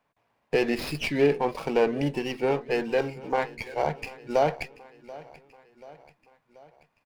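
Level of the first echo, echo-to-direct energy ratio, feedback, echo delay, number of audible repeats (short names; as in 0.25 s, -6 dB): -19.5 dB, -18.0 dB, 55%, 0.734 s, 3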